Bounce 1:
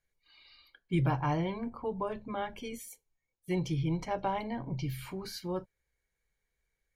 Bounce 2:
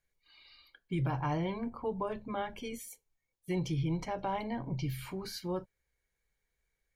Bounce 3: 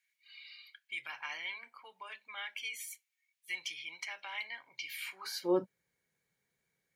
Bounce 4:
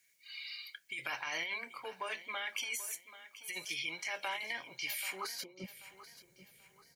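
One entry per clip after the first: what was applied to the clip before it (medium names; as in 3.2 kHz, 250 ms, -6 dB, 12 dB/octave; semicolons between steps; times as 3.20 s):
peak limiter -25 dBFS, peak gain reduction 6 dB
high-pass sweep 2.2 kHz -> 160 Hz, 5.10–5.71 s; trim +2 dB
high-order bell 1.8 kHz -8 dB 2.7 oct; compressor with a negative ratio -51 dBFS, ratio -1; feedback delay 785 ms, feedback 35%, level -15 dB; trim +8 dB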